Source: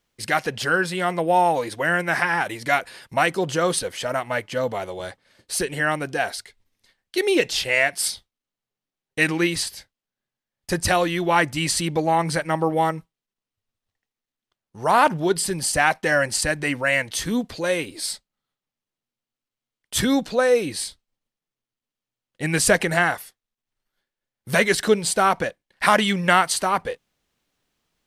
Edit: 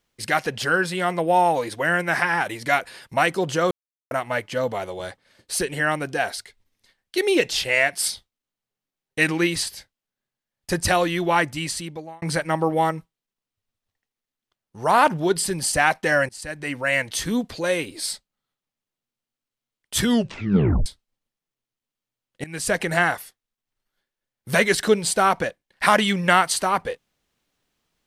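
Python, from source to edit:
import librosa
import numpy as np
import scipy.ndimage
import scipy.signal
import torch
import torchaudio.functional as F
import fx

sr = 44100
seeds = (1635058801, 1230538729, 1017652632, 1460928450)

y = fx.edit(x, sr, fx.silence(start_s=3.71, length_s=0.4),
    fx.fade_out_span(start_s=11.25, length_s=0.97),
    fx.fade_in_from(start_s=16.29, length_s=0.72, floor_db=-23.0),
    fx.tape_stop(start_s=20.03, length_s=0.83),
    fx.fade_in_from(start_s=22.44, length_s=0.57, floor_db=-19.5), tone=tone)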